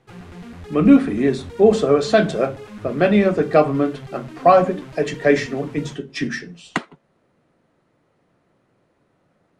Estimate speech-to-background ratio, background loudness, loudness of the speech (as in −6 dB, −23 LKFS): 19.5 dB, −38.0 LKFS, −18.5 LKFS